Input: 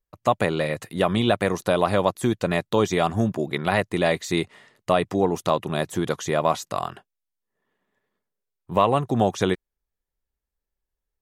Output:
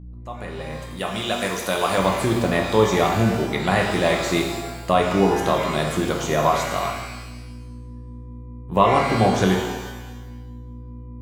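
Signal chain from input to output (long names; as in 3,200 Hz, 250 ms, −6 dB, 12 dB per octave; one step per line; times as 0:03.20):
fade in at the beginning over 2.19 s
mains hum 60 Hz, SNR 15 dB
0:00.96–0:01.98: spectral tilt +2.5 dB per octave
reverb with rising layers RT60 1.1 s, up +12 semitones, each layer −8 dB, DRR 0.5 dB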